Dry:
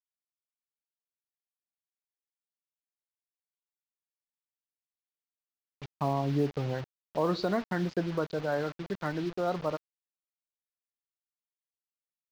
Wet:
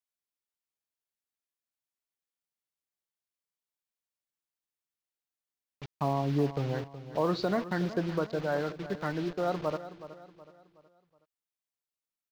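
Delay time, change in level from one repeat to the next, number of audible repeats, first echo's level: 371 ms, -8.0 dB, 3, -14.0 dB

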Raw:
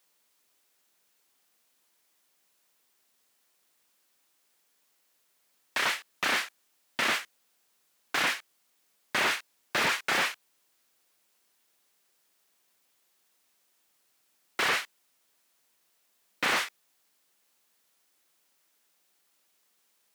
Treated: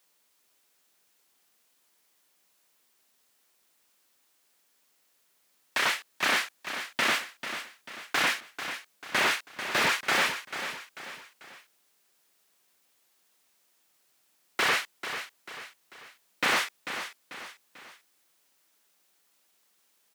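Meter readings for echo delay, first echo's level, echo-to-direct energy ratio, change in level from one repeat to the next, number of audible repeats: 442 ms, -10.0 dB, -9.0 dB, -7.5 dB, 3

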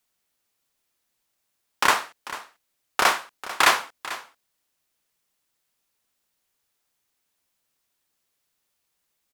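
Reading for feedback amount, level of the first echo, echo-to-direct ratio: no regular repeats, -15.5 dB, -15.5 dB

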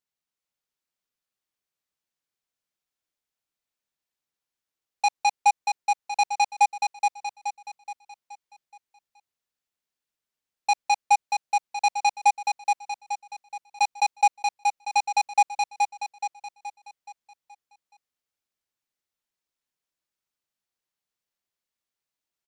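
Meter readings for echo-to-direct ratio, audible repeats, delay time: -2.5 dB, 5, 424 ms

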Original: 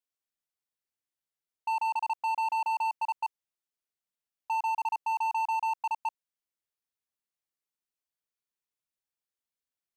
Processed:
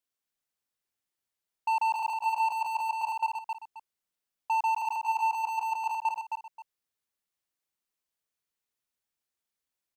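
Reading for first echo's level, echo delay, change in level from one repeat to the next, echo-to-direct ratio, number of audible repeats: -5.0 dB, 266 ms, -12.0 dB, -4.5 dB, 2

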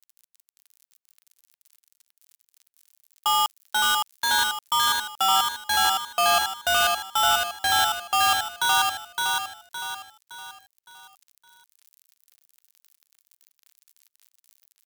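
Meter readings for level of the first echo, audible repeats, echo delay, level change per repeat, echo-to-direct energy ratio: -3.0 dB, 5, 564 ms, -7.5 dB, -2.0 dB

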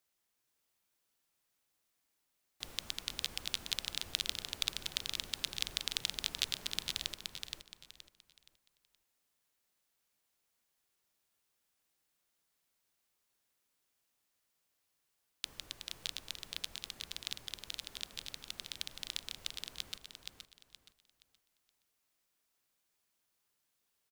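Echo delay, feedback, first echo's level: 472 ms, 29%, -5.0 dB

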